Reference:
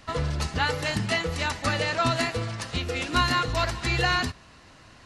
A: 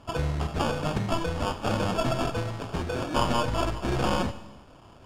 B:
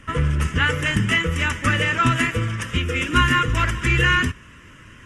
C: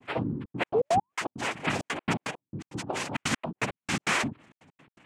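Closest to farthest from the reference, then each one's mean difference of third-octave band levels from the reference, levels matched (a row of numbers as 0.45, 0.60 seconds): B, A, C; 4.0, 5.5, 12.5 decibels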